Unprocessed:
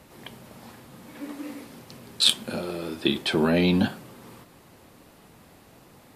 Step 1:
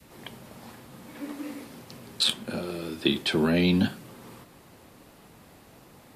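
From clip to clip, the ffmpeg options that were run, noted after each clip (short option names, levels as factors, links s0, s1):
-filter_complex "[0:a]adynamicequalizer=threshold=0.01:dfrequency=760:dqfactor=0.75:tfrequency=760:tqfactor=0.75:attack=5:release=100:ratio=0.375:range=3.5:mode=cutabove:tftype=bell,acrossover=split=160|1200|2300[s0][s1][s2][s3];[s3]alimiter=limit=0.266:level=0:latency=1:release=499[s4];[s0][s1][s2][s4]amix=inputs=4:normalize=0"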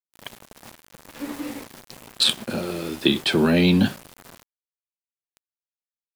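-af "aeval=exprs='val(0)*gte(abs(val(0)),0.01)':c=same,volume=1.78"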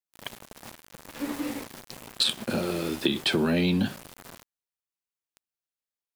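-af "acompressor=threshold=0.0891:ratio=6"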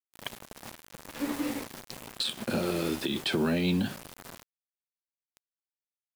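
-af "alimiter=limit=0.112:level=0:latency=1:release=101,acrusher=bits=7:mix=0:aa=0.000001"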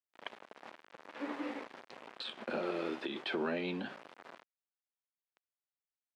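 -af "highpass=380,lowpass=2400,volume=0.708"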